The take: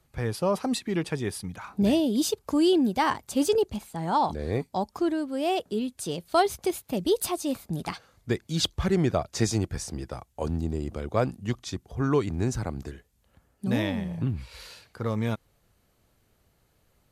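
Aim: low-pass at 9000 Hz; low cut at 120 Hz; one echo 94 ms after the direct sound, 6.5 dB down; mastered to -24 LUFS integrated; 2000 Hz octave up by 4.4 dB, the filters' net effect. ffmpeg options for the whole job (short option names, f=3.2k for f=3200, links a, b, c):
-af "highpass=120,lowpass=9k,equalizer=f=2k:t=o:g=5.5,aecho=1:1:94:0.473,volume=3dB"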